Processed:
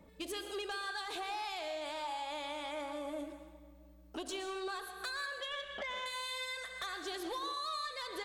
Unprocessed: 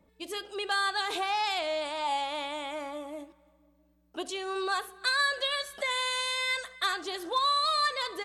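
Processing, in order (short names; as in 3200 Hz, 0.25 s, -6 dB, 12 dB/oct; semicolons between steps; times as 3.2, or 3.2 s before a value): 5.26–6.06 elliptic low-pass 3400 Hz; compressor 16:1, threshold -41 dBFS, peak gain reduction 18.5 dB; soft clip -39.5 dBFS, distortion -16 dB; plate-style reverb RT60 0.72 s, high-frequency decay 1×, pre-delay 0.105 s, DRR 8 dB; gain +5.5 dB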